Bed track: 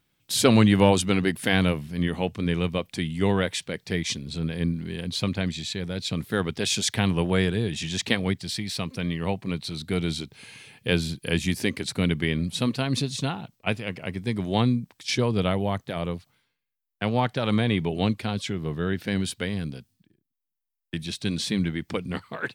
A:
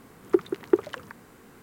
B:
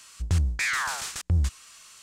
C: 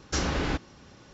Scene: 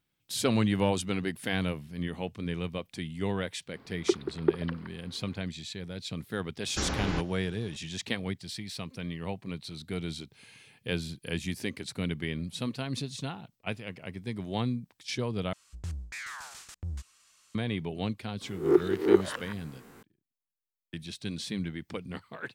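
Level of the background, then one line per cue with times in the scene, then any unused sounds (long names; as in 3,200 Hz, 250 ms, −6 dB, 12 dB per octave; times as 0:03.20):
bed track −8.5 dB
0:03.75: mix in A −4.5 dB + downsampling to 11,025 Hz
0:06.64: mix in C −4 dB
0:15.53: overwrite with B −13.5 dB
0:18.41: mix in A −2.5 dB + peak hold with a rise ahead of every peak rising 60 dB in 0.40 s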